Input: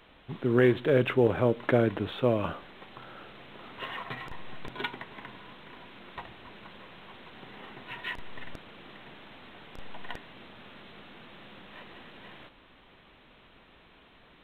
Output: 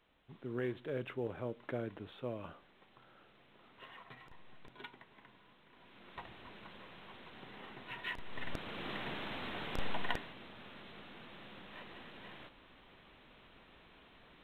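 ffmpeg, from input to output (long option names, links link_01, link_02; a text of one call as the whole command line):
ffmpeg -i in.wav -af "volume=7dB,afade=type=in:start_time=5.71:duration=0.65:silence=0.281838,afade=type=in:start_time=8.25:duration=0.68:silence=0.251189,afade=type=out:start_time=9.86:duration=0.5:silence=0.298538" out.wav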